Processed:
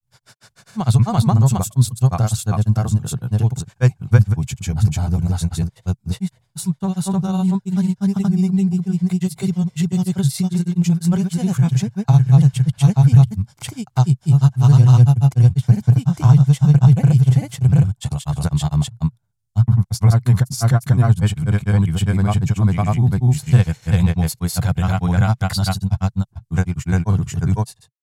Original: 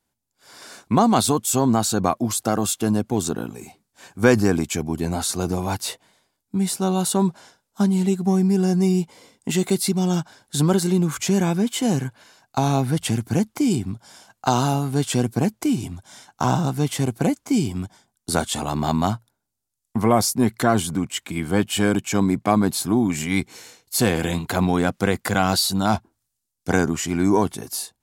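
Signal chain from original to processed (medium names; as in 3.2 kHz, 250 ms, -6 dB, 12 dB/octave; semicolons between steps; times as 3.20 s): granulator, grains 20 per s, spray 599 ms, pitch spread up and down by 0 st; resonant low shelf 190 Hz +13 dB, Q 3; trim -3 dB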